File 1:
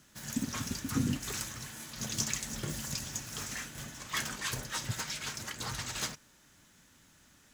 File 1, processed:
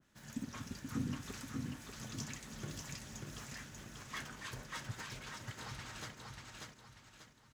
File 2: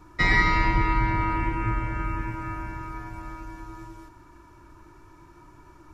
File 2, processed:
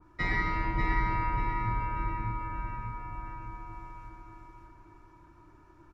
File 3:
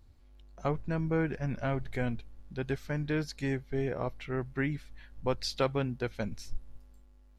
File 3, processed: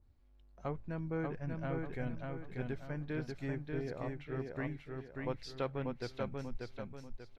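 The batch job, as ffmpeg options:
ffmpeg -i in.wav -filter_complex "[0:a]highshelf=frequency=4500:gain=-10,asplit=2[link_01][link_02];[link_02]aecho=0:1:589|1178|1767|2356|2945:0.668|0.254|0.0965|0.0367|0.0139[link_03];[link_01][link_03]amix=inputs=2:normalize=0,adynamicequalizer=threshold=0.00794:dfrequency=2300:dqfactor=0.7:tfrequency=2300:tqfactor=0.7:attack=5:release=100:ratio=0.375:range=2.5:mode=cutabove:tftype=highshelf,volume=-8dB" out.wav

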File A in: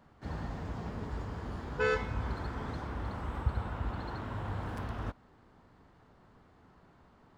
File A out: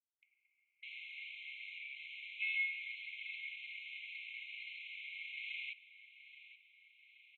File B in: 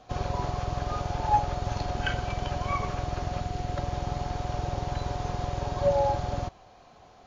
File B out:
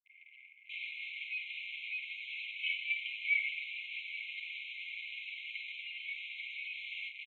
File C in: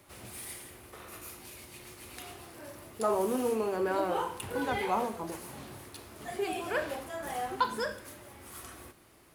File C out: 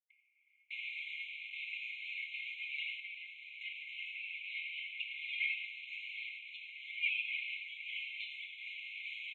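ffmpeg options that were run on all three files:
ffmpeg -i in.wav -filter_complex "[0:a]aecho=1:1:7.4:0.75,adynamicequalizer=threshold=0.00282:dfrequency=1400:dqfactor=5.5:tfrequency=1400:tqfactor=5.5:attack=5:release=100:ratio=0.375:range=3:mode=boostabove:tftype=bell,agate=range=-33dB:threshold=-49dB:ratio=3:detection=peak,asuperstop=centerf=1100:order=20:qfactor=4.3,acrusher=bits=7:mix=0:aa=0.000001,lowshelf=frequency=210:gain=11,acrossover=split=180|890[link_01][link_02][link_03];[link_01]adelay=90[link_04];[link_03]adelay=600[link_05];[link_04][link_02][link_05]amix=inputs=3:normalize=0,acompressor=mode=upward:threshold=-35dB:ratio=2.5,asplit=2[link_06][link_07];[link_07]highpass=frequency=720:poles=1,volume=22dB,asoftclip=type=tanh:threshold=-14dB[link_08];[link_06][link_08]amix=inputs=2:normalize=0,lowpass=frequency=1100:poles=1,volume=-6dB,lowpass=frequency=2600:width=0.5412,lowpass=frequency=2600:width=1.3066,asplit=2[link_09][link_10];[link_10]aecho=0:1:827|1654|2481|3308|4135:0.188|0.0998|0.0529|0.028|0.0149[link_11];[link_09][link_11]amix=inputs=2:normalize=0,afftfilt=real='re*eq(mod(floor(b*sr/1024/2100),2),1)':imag='im*eq(mod(floor(b*sr/1024/2100),2),1)':win_size=1024:overlap=0.75,volume=5dB" out.wav

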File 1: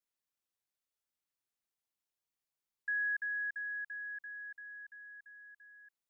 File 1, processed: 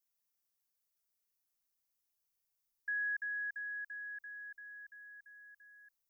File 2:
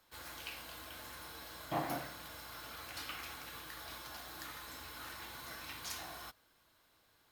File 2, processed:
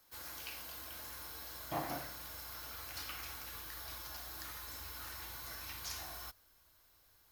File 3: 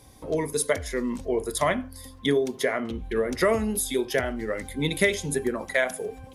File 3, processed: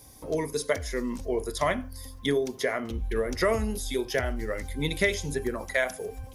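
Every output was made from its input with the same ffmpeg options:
ffmpeg -i in.wav -filter_complex "[0:a]aexciter=amount=2.6:drive=2.7:freq=4900,acrossover=split=5900[link_01][link_02];[link_02]acompressor=threshold=-42dB:ratio=4:attack=1:release=60[link_03];[link_01][link_03]amix=inputs=2:normalize=0,asubboost=boost=4:cutoff=90,volume=-2dB" out.wav

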